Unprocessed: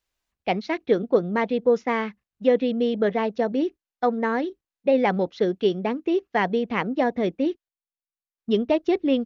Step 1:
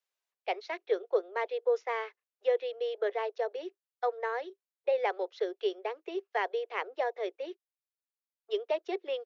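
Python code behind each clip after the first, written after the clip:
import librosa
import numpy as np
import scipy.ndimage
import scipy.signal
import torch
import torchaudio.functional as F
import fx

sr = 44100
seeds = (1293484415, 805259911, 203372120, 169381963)

y = scipy.signal.sosfilt(scipy.signal.butter(12, 380.0, 'highpass', fs=sr, output='sos'), x)
y = y * 10.0 ** (-8.0 / 20.0)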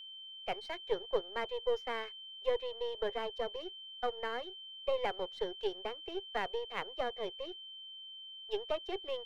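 y = np.where(x < 0.0, 10.0 ** (-7.0 / 20.0) * x, x)
y = y + 10.0 ** (-44.0 / 20.0) * np.sin(2.0 * np.pi * 3100.0 * np.arange(len(y)) / sr)
y = y * 10.0 ** (-2.5 / 20.0)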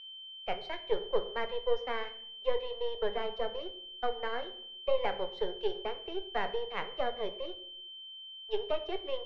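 y = fx.air_absorb(x, sr, metres=140.0)
y = fx.room_shoebox(y, sr, seeds[0], volume_m3=120.0, walls='mixed', distance_m=0.33)
y = y * 10.0 ** (2.5 / 20.0)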